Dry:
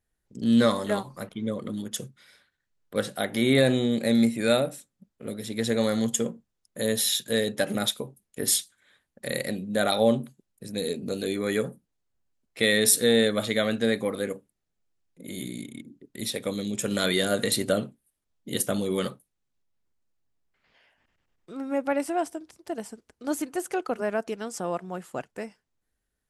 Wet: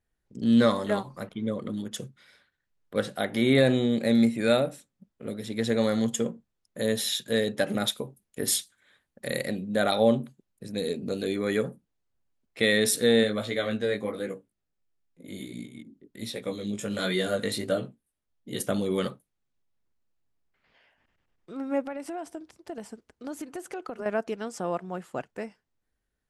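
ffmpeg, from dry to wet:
-filter_complex "[0:a]asettb=1/sr,asplit=3[a][b][c];[a]atrim=end=7.874[d];[b]atrim=start=7.87:end=9.47,asetpts=PTS-STARTPTS,afade=t=in:d=0.004:c=qsin,afade=t=out:st=1.596:d=0.004:c=qsin,highshelf=f=9k:g=7[e];[c]atrim=start=9.466[f];[d][e]acrossfade=d=0.004:c1=hsin:c2=qsin[g];[g][f]acrossfade=d=0.004:c1=qsin:c2=hsin,asplit=3[h][i][j];[h]afade=t=out:st=13.23:d=0.02[k];[i]flanger=delay=16:depth=4:speed=1.4,afade=t=in:st=13.23:d=0.02,afade=t=out:st=18.59:d=0.02[l];[j]afade=t=in:st=18.59:d=0.02[m];[k][l][m]amix=inputs=3:normalize=0,asettb=1/sr,asplit=3[n][o][p];[n]atrim=end=21.834[q];[o]atrim=start=21.83:end=24.06,asetpts=PTS-STARTPTS,afade=t=in:d=0.004:c=qsin,afade=t=out:st=2.226:d=0.004:c=qsin,acompressor=threshold=-32dB:ratio=6:attack=3.2:release=140:knee=1:detection=peak[r];[p]atrim=start=24.056[s];[q][r]acrossfade=d=0.004:c1=hsin:c2=qsin[t];[t][s]acrossfade=d=0.004:c1=qsin:c2=hsin,highshelf=f=6.5k:g=-9.5"

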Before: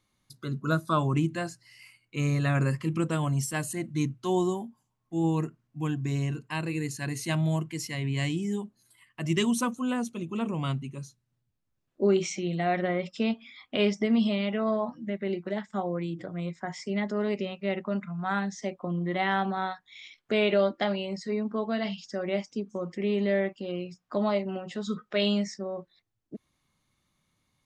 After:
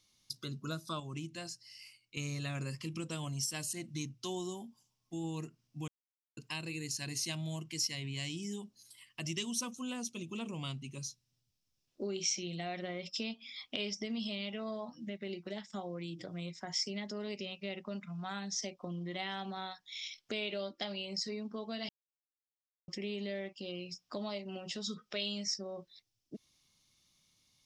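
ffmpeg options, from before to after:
-filter_complex "[0:a]asplit=7[a][b][c][d][e][f][g];[a]atrim=end=1.002[h];[b]atrim=start=0.998:end=2.172,asetpts=PTS-STARTPTS,volume=-6dB[i];[c]atrim=start=2.168:end=5.88,asetpts=PTS-STARTPTS,afade=t=out:st=3.708:d=0.004:c=hsin[j];[d]atrim=start=5.88:end=6.37,asetpts=PTS-STARTPTS,volume=0[k];[e]atrim=start=6.37:end=21.89,asetpts=PTS-STARTPTS,afade=t=in:d=0.004:c=hsin,afade=t=out:st=15.516:d=0.004:c=hsin[l];[f]atrim=start=21.89:end=22.88,asetpts=PTS-STARTPTS,volume=0[m];[g]atrim=start=22.88,asetpts=PTS-STARTPTS,afade=t=in:d=0.004:c=hsin[n];[h][i]acrossfade=d=0.004:c1=hsin:c2=hsin[o];[j][k][l][m][n]concat=n=5:v=0:a=1[p];[o][p]acrossfade=d=0.004:c1=hsin:c2=hsin,highshelf=f=2.2k:t=q:w=1.5:g=7.5,acompressor=threshold=-36dB:ratio=2.5,equalizer=f=5.4k:w=3.1:g=11,volume=-4.5dB"

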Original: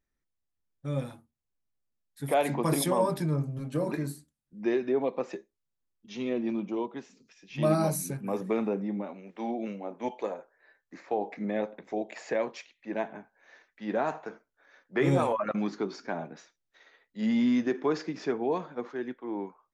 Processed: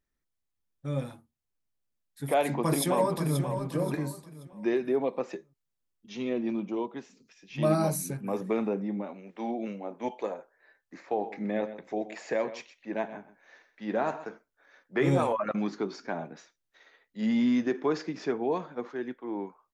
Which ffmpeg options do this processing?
-filter_complex "[0:a]asplit=2[a][b];[b]afade=t=in:st=2.37:d=0.01,afade=t=out:st=3.41:d=0.01,aecho=0:1:530|1060|1590|2120:0.375837|0.112751|0.0338254|0.0101476[c];[a][c]amix=inputs=2:normalize=0,asettb=1/sr,asplit=3[d][e][f];[d]atrim=end=11.064[g];[e]atrim=start=11.06:end=14.25,asetpts=PTS-STARTPTS,afade=t=in:d=0.004:c=qsin,afade=t=out:st=3.186:d=0.004:c=qsin,aecho=1:1:126:0.2,atrim=end_sample=140679[h];[f]atrim=start=14.246[i];[g][h]acrossfade=d=0.004:c1=hsin:c2=qsin[j];[j][i]acrossfade=d=0.004:c1=qsin:c2=hsin"

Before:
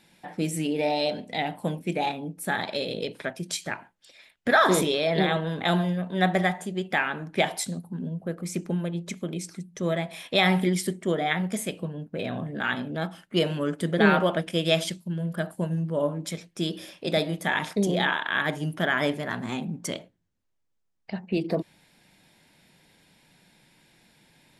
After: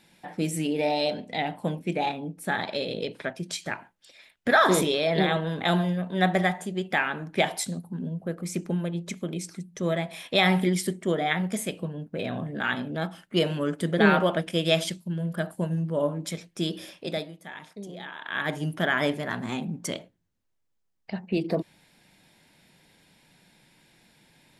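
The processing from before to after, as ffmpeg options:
-filter_complex "[0:a]asettb=1/sr,asplit=3[a][b][c];[a]atrim=end=1.144[d];[b]atrim=start=1.14:end=3.66,asetpts=PTS-STARTPTS,afade=t=in:d=0.004:c=qsin,afade=t=out:st=2.516:d=0.004:c=qsin,highshelf=f=9.1k:g=-10[e];[c]atrim=start=3.656[f];[d][e]acrossfade=d=0.004:c1=hsin:c2=qsin[g];[g][f]acrossfade=d=0.004:c1=qsin:c2=hsin,asplit=3[h][i][j];[h]atrim=end=17.33,asetpts=PTS-STARTPTS,afade=t=out:st=16.89:d=0.44:silence=0.16788[k];[i]atrim=start=17.33:end=18.13,asetpts=PTS-STARTPTS,volume=-15.5dB[l];[j]atrim=start=18.13,asetpts=PTS-STARTPTS,afade=t=in:d=0.44:silence=0.16788[m];[k][l][m]concat=n=3:v=0:a=1"

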